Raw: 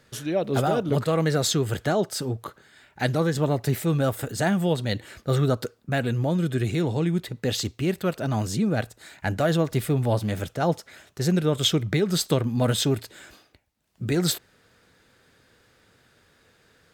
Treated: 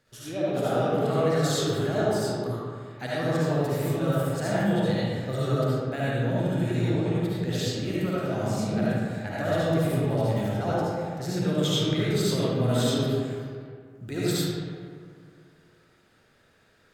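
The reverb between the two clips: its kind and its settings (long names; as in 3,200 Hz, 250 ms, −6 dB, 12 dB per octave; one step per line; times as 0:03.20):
comb and all-pass reverb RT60 2.1 s, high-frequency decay 0.5×, pre-delay 30 ms, DRR −9 dB
level −11 dB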